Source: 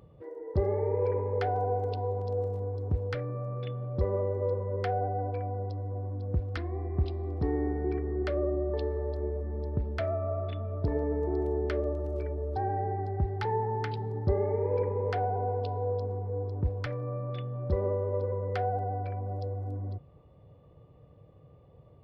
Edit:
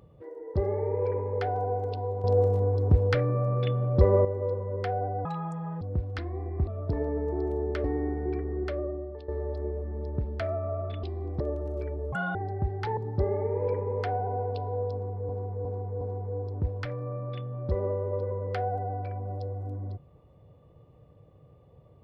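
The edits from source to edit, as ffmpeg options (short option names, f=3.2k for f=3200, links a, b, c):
-filter_complex "[0:a]asplit=16[a][b][c][d][e][f][g][h][i][j][k][l][m][n][o][p];[a]atrim=end=2.242[q];[b]atrim=start=2.238:end=4.252,asetpts=PTS-STARTPTS,volume=8.5dB[r];[c]atrim=start=4.248:end=5.254[s];[d]atrim=start=5.25:end=6.2,asetpts=PTS-STARTPTS,asetrate=74529,aresample=44100[t];[e]atrim=start=6.196:end=7.062[u];[f]atrim=start=10.618:end=11.792[v];[g]atrim=start=7.428:end=8.87,asetpts=PTS-STARTPTS,afade=t=out:st=0.732:d=0.71:silence=0.188365[w];[h]atrim=start=8.87:end=10.622,asetpts=PTS-STARTPTS,afade=t=in:d=0.004:c=hsin:silence=0.188365[x];[i]atrim=start=7.058:end=7.432[y];[j]atrim=start=11.788:end=12.514[z];[k]atrim=start=12.51:end=12.93,asetpts=PTS-STARTPTS,asetrate=81144,aresample=44100,atrim=end_sample=10066,asetpts=PTS-STARTPTS[aa];[l]atrim=start=12.926:end=13.552[ab];[m]atrim=start=14.058:end=16.382[ac];[n]atrim=start=16.018:end=16.382[ad];[o]atrim=start=16.018:end=16.382[ae];[p]atrim=start=16.018[af];[q][r]acrossfade=d=0.004:c1=hsin:c2=hsin[ag];[ag][s]acrossfade=d=0.004:c1=hsin:c2=hsin[ah];[ah][t]acrossfade=d=0.004:c1=hsin:c2=hsin[ai];[ai][u]acrossfade=d=0.004:c1=hsin:c2=hsin[aj];[aj][v]acrossfade=d=0.004:c1=hsin:c2=hsin[ak];[w][x]concat=n=2:v=0:a=1[al];[ak][al]acrossfade=d=0.004:c1=hsin:c2=hsin[am];[am][y]acrossfade=d=0.004:c1=hsin:c2=hsin[an];[an][z]acrossfade=d=0.004:c1=hsin:c2=hsin[ao];[ao][aa]acrossfade=d=0.004:c1=hsin:c2=hsin[ap];[ap][ab]acrossfade=d=0.004:c1=hsin:c2=hsin[aq];[aq][ac]acrossfade=d=0.004:c1=hsin:c2=hsin[ar];[ar][ad]acrossfade=d=0.004:c1=hsin:c2=hsin[as];[as][ae]acrossfade=d=0.004:c1=hsin:c2=hsin[at];[at][af]acrossfade=d=0.004:c1=hsin:c2=hsin"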